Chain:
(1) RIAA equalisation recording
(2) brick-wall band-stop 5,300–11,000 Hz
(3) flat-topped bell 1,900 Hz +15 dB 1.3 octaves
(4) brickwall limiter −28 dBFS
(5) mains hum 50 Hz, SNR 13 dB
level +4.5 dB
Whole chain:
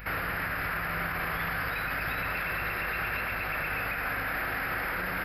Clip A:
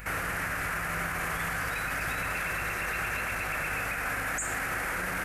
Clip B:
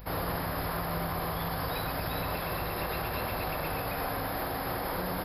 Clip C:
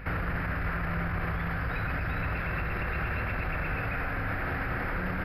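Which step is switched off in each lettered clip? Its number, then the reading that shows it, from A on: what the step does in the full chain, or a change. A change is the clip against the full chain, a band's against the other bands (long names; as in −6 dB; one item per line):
2, 8 kHz band +12.5 dB
3, 2 kHz band −13.5 dB
1, 125 Hz band +10.5 dB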